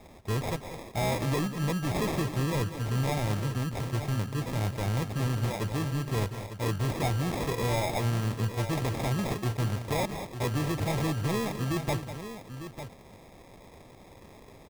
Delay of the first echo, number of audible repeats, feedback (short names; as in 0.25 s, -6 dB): 0.195 s, 2, no steady repeat